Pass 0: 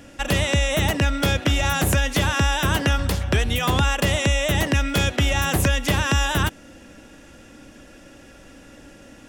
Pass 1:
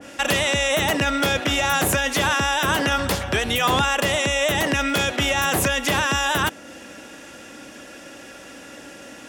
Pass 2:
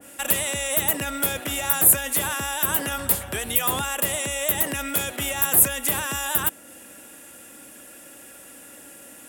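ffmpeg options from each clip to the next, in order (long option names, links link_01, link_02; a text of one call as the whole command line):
ffmpeg -i in.wav -af "highpass=frequency=440:poles=1,alimiter=limit=-18dB:level=0:latency=1:release=15,adynamicequalizer=threshold=0.00891:dfrequency=1700:dqfactor=0.7:tfrequency=1700:tqfactor=0.7:attack=5:release=100:ratio=0.375:range=1.5:mode=cutabove:tftype=highshelf,volume=8.5dB" out.wav
ffmpeg -i in.wav -af "aexciter=amount=13.3:drive=0.9:freq=8100,volume=-8dB" out.wav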